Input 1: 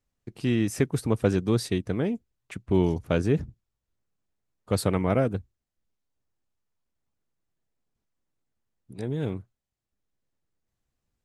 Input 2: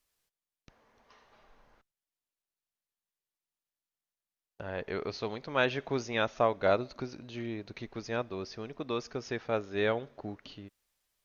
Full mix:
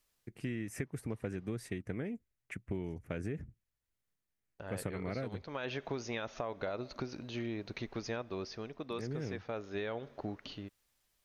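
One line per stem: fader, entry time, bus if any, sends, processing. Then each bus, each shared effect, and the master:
−4.5 dB, 0.00 s, no send, graphic EQ with 10 bands 1,000 Hz −6 dB, 2,000 Hz +10 dB, 4,000 Hz −11 dB; amplitude modulation by smooth noise, depth 60%
+2.0 dB, 0.00 s, no send, brickwall limiter −22 dBFS, peak gain reduction 10.5 dB; automatic ducking −7 dB, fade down 0.65 s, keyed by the first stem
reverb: not used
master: downward compressor 10 to 1, threshold −34 dBFS, peak gain reduction 11.5 dB

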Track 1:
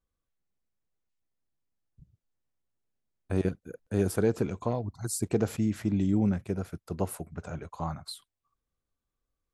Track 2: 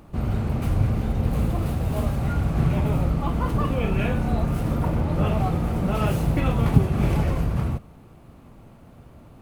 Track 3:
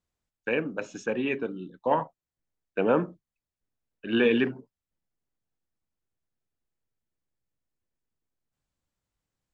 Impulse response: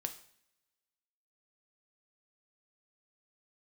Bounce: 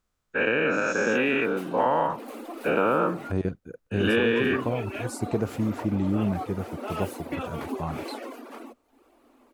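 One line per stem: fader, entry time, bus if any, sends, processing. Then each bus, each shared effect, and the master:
+1.5 dB, 0.00 s, no send, high-shelf EQ 5,600 Hz −11.5 dB
−4.5 dB, 0.95 s, muted 0:03.32–0:04.00, no send, reverb reduction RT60 0.66 s; Butterworth high-pass 240 Hz 96 dB per octave
0.0 dB, 0.00 s, no send, every bin's largest magnitude spread in time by 240 ms; parametric band 1,300 Hz +8 dB 0.39 octaves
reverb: not used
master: downward compressor 6 to 1, threshold −19 dBFS, peak gain reduction 8 dB

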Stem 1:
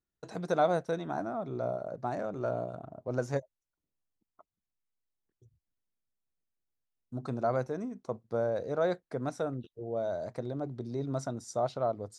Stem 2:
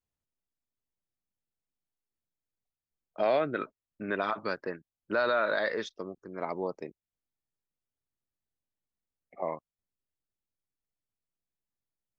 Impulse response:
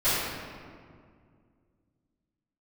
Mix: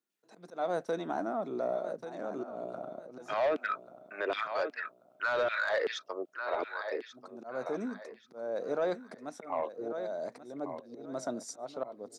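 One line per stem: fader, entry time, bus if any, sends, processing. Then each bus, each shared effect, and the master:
+2.0 dB, 0.00 s, no send, echo send −12.5 dB, volume swells 351 ms
+1.0 dB, 0.10 s, no send, echo send −13 dB, auto-filter high-pass saw down 2.6 Hz 320–3,100 Hz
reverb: not used
echo: repeating echo 1,137 ms, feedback 28%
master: high-pass filter 210 Hz 24 dB per octave; soft clipping −18 dBFS, distortion −15 dB; brickwall limiter −23.5 dBFS, peak gain reduction 5.5 dB

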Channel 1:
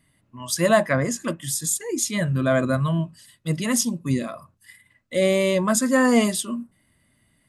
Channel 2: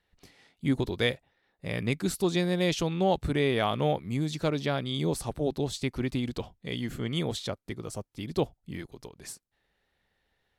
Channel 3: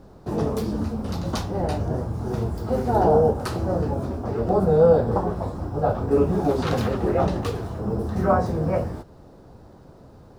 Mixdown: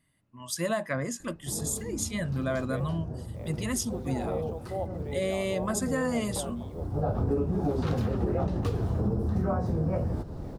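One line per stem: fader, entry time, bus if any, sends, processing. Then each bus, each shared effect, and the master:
−8.0 dB, 0.00 s, no send, no processing
−5.5 dB, 1.70 s, no send, resonant band-pass 590 Hz, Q 2.3; bit reduction 10 bits
+2.0 dB, 1.20 s, no send, low-shelf EQ 350 Hz +10 dB; automatic ducking −21 dB, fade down 1.55 s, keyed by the first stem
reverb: not used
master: downward compressor 12 to 1, threshold −24 dBFS, peak gain reduction 18 dB

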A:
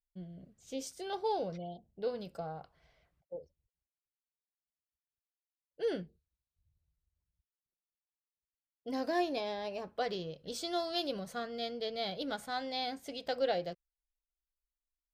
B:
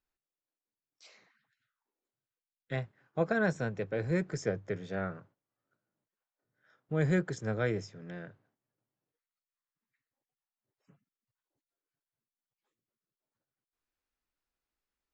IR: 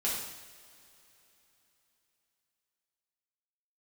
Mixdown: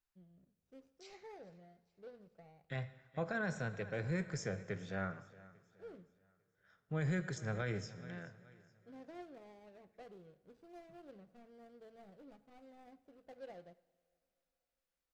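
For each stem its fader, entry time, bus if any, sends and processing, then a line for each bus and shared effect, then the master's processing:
−17.5 dB, 0.00 s, send −19 dB, no echo send, running median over 41 samples; high-shelf EQ 5,900 Hz −8.5 dB
−3.0 dB, 0.00 s, send −17.5 dB, echo send −19 dB, parametric band 370 Hz −7 dB 1.6 octaves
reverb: on, pre-delay 3 ms
echo: repeating echo 424 ms, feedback 39%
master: brickwall limiter −28 dBFS, peak gain reduction 6 dB

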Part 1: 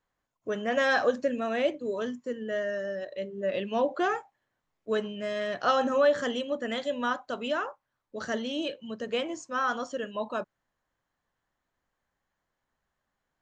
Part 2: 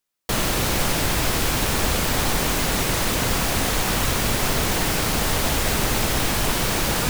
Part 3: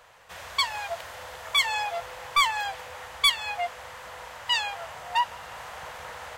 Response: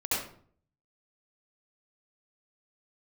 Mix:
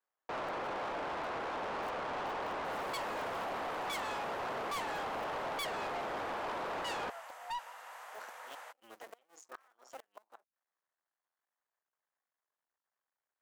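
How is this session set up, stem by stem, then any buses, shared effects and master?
−5.0 dB, 0.00 s, no send, sub-harmonics by changed cycles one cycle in 2, muted; gate with flip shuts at −24 dBFS, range −30 dB
+0.5 dB, 0.00 s, no send, low-pass filter 1,100 Hz 12 dB per octave
−6.0 dB, 2.35 s, no send, no processing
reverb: not used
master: high-pass filter 680 Hz 12 dB per octave; parametric band 3,800 Hz −7 dB 1.8 octaves; soft clipping −35 dBFS, distortion −9 dB

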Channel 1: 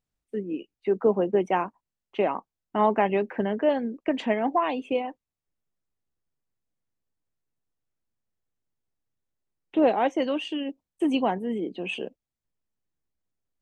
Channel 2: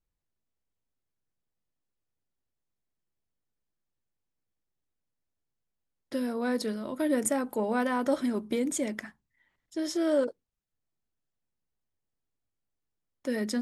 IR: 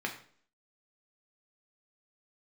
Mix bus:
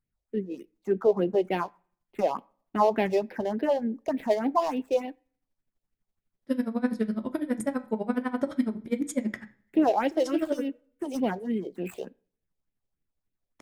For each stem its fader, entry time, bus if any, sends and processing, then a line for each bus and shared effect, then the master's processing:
+1.5 dB, 0.00 s, send −22.5 dB, running median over 15 samples; all-pass phaser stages 4, 3.4 Hz, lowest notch 210–1,200 Hz
+0.5 dB, 0.35 s, send −8.5 dB, speech leveller; bass and treble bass +9 dB, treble −3 dB; tremolo with a sine in dB 12 Hz, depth 30 dB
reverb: on, RT60 0.50 s, pre-delay 3 ms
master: no processing

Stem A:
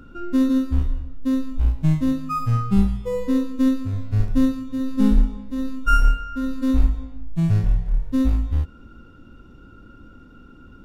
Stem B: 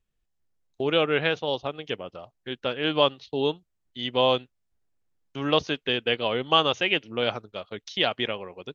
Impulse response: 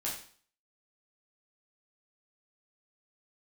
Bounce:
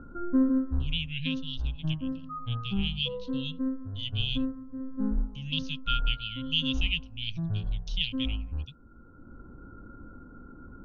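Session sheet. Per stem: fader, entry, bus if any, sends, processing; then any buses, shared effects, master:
−0.5 dB, 0.00 s, no send, elliptic low-pass filter 1,600 Hz, stop band 40 dB; automatic ducking −11 dB, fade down 1.20 s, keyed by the second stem
0.0 dB, 0.00 s, no send, Chebyshev band-stop filter 170–2,700 Hz, order 4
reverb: not used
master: high-shelf EQ 4,000 Hz −8.5 dB

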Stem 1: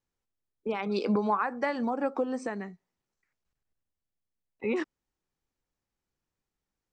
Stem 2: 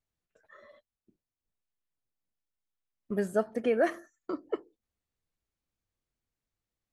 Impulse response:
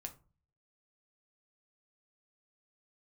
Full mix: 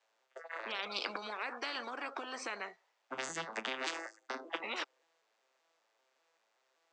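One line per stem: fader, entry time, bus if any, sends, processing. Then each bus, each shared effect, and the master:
−15.0 dB, 0.00 s, no send, low-pass filter 4,300 Hz 12 dB per octave
−3.0 dB, 0.00 s, send −15 dB, vocoder with an arpeggio as carrier minor triad, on A2, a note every 193 ms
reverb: on, RT60 0.35 s, pre-delay 5 ms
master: high-pass filter 550 Hz 24 dB per octave; every bin compressed towards the loudest bin 10 to 1

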